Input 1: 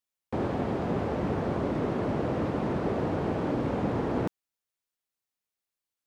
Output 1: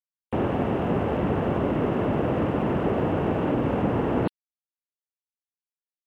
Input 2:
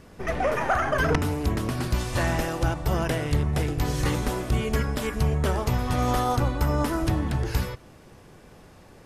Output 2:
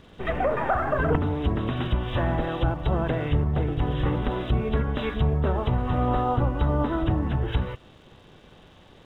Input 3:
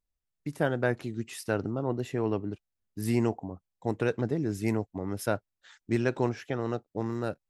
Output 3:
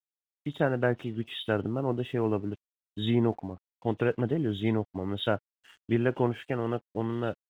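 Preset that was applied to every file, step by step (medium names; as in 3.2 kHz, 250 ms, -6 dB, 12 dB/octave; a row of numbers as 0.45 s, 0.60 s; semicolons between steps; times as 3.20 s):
knee-point frequency compression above 2.6 kHz 4:1; low-pass that closes with the level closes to 1.3 kHz, closed at -20.5 dBFS; crossover distortion -58.5 dBFS; peak normalisation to -12 dBFS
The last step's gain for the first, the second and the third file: +5.0 dB, +1.0 dB, +1.5 dB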